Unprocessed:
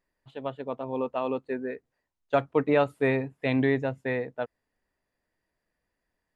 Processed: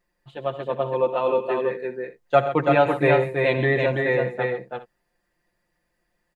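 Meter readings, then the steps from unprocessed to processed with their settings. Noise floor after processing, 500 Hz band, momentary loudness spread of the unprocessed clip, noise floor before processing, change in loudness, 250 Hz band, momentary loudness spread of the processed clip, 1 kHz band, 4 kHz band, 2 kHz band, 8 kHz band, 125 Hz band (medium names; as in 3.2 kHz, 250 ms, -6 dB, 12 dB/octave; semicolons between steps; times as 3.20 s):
-75 dBFS, +7.0 dB, 13 LU, -83 dBFS, +6.5 dB, +1.0 dB, 13 LU, +9.0 dB, +7.5 dB, +8.0 dB, no reading, +7.0 dB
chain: comb 5.7 ms, depth 81%; multi-tap echo 73/93/129/332/394 ms -16.5/-16.5/-12/-3.5/-16.5 dB; trim +3.5 dB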